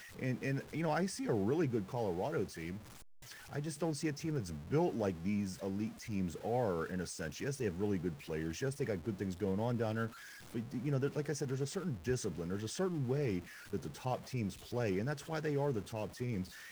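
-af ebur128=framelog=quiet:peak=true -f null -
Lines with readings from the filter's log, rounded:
Integrated loudness:
  I:         -38.0 LUFS
  Threshold: -48.1 LUFS
Loudness range:
  LRA:         1.5 LU
  Threshold: -58.2 LUFS
  LRA low:   -38.8 LUFS
  LRA high:  -37.3 LUFS
True peak:
  Peak:      -22.2 dBFS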